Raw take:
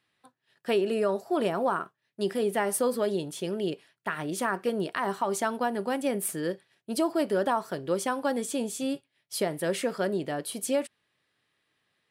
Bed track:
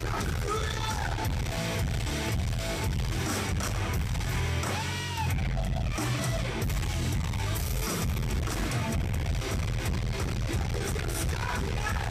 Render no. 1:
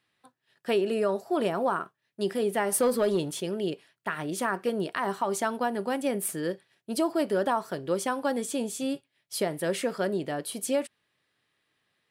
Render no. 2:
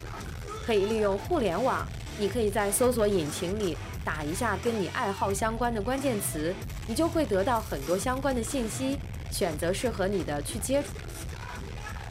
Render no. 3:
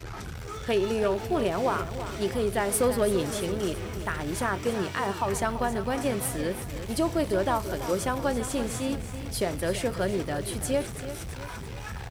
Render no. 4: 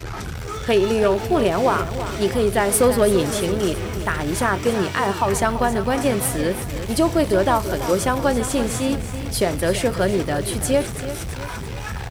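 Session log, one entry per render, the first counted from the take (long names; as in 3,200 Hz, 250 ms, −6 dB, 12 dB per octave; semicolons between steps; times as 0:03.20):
0:02.72–0:03.41: leveller curve on the samples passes 1
mix in bed track −8 dB
single-tap delay 297 ms −21.5 dB; feedback echo at a low word length 335 ms, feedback 55%, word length 8 bits, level −11 dB
level +8 dB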